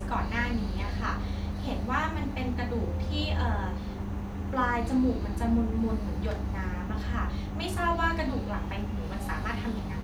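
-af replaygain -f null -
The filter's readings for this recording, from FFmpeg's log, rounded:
track_gain = +12.2 dB
track_peak = 0.136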